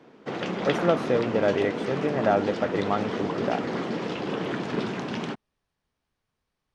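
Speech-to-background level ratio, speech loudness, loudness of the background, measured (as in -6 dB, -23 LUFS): 3.5 dB, -27.0 LUFS, -30.5 LUFS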